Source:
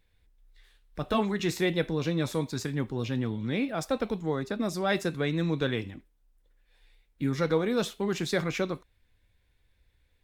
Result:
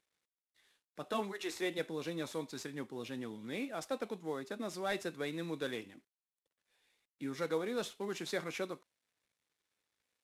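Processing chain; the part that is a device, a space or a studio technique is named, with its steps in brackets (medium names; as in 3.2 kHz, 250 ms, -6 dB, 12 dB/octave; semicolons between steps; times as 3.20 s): 1.31–1.77 s: high-pass 420 Hz -> 160 Hz 24 dB/octave; early wireless headset (high-pass 260 Hz 12 dB/octave; CVSD coder 64 kbps); trim -8 dB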